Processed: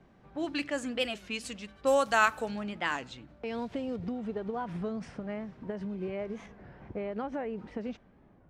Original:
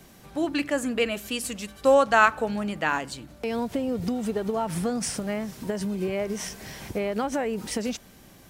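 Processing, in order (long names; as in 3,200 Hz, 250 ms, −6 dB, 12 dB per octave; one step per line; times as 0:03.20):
high-shelf EQ 3,000 Hz +8.5 dB, from 0:03.96 −5.5 dB, from 0:06.47 −10.5 dB
low-pass that shuts in the quiet parts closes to 1,300 Hz, open at −16 dBFS
wow of a warped record 33 1/3 rpm, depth 160 cents
level −7.5 dB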